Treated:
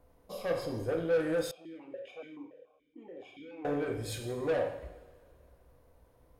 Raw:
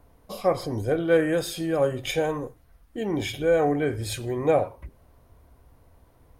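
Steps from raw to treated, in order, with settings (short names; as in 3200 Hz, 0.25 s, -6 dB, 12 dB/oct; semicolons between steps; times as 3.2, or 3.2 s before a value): bell 510 Hz +6 dB 0.43 oct; soft clip -19.5 dBFS, distortion -8 dB; two-slope reverb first 0.83 s, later 2.7 s, from -18 dB, DRR 2.5 dB; 1.51–3.65 vowel sequencer 7 Hz; gain -9 dB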